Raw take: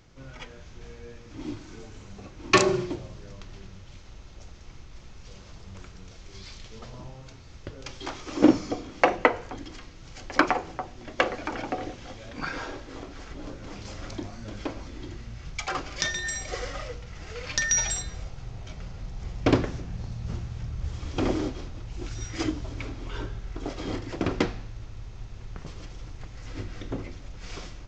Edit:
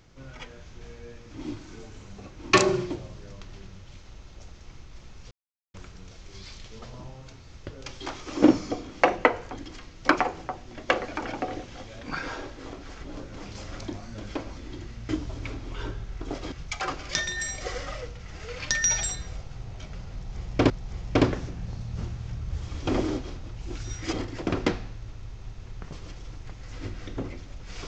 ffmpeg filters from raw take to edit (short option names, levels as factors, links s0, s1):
-filter_complex "[0:a]asplit=8[s0][s1][s2][s3][s4][s5][s6][s7];[s0]atrim=end=5.31,asetpts=PTS-STARTPTS,afade=t=out:st=5.306:d=0.004:c=hsin[s8];[s1]atrim=start=5.31:end=5.74,asetpts=PTS-STARTPTS,volume=0[s9];[s2]atrim=start=5.74:end=10.052,asetpts=PTS-STARTPTS,afade=t=in:d=0.004:c=hsin[s10];[s3]atrim=start=10.348:end=15.392[s11];[s4]atrim=start=22.438:end=23.872[s12];[s5]atrim=start=15.388:end=19.572[s13];[s6]atrim=start=19.008:end=22.442[s14];[s7]atrim=start=23.868[s15];[s8][s9][s10]concat=n=3:v=0:a=1[s16];[s16][s11]acrossfade=d=0.004:c1=hsin:c2=hsin[s17];[s17][s12]acrossfade=d=0.004:c1=hsin:c2=hsin[s18];[s18][s13]acrossfade=d=0.004:c1=hsin:c2=hsin[s19];[s19][s14]acrossfade=d=0.004:c1=hsin:c2=hsin[s20];[s20][s15]acrossfade=d=0.004:c1=hsin:c2=hsin"